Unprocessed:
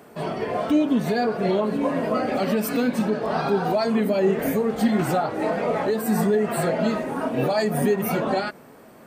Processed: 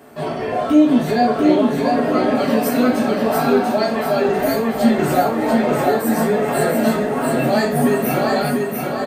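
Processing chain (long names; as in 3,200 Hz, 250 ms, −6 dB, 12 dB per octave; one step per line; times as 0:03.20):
0:03.57–0:04.29: high-pass filter 510 Hz
repeating echo 692 ms, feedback 42%, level −3.5 dB
convolution reverb, pre-delay 3 ms, DRR −2.5 dB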